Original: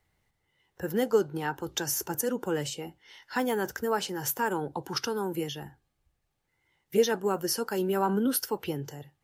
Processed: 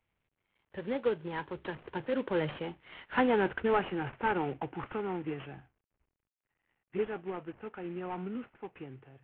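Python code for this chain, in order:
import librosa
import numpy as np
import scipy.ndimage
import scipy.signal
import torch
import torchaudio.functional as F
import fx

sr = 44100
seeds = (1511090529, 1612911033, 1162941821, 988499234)

y = fx.cvsd(x, sr, bps=16000)
y = fx.doppler_pass(y, sr, speed_mps=25, closest_m=25.0, pass_at_s=3.26)
y = y * 10.0 ** (2.5 / 20.0)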